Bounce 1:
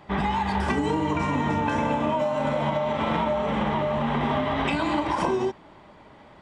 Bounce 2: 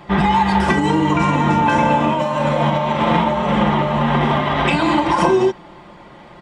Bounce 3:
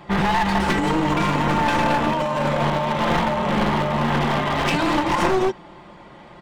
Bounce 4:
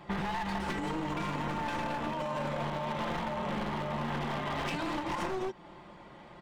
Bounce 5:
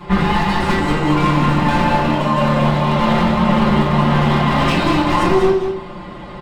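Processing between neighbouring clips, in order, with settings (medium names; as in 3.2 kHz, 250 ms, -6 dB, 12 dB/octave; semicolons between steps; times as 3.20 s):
comb 5.7 ms, depth 55%; trim +8 dB
one-sided wavefolder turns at -15 dBFS; trim -2.5 dB
compression 4:1, threshold -24 dBFS, peak gain reduction 9 dB; trim -7.5 dB
delay 190 ms -7 dB; reverberation RT60 0.40 s, pre-delay 3 ms, DRR -7.5 dB; trim +6 dB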